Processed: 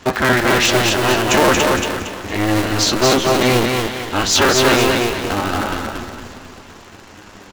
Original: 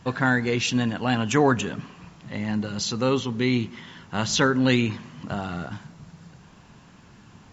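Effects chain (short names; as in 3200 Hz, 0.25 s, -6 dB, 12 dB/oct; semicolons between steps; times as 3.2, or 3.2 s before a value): cycle switcher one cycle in 2, inverted; in parallel at 0 dB: compressor, threshold -31 dBFS, peak gain reduction 15.5 dB; on the sum: sample leveller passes 2; low shelf 230 Hz -8.5 dB; on a send: feedback echo 0.23 s, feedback 37%, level -3 dB; on the sum: flange 0.31 Hz, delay 7.5 ms, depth 4.1 ms, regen +66%; warbling echo 0.493 s, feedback 59%, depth 115 cents, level -24 dB; gain +5 dB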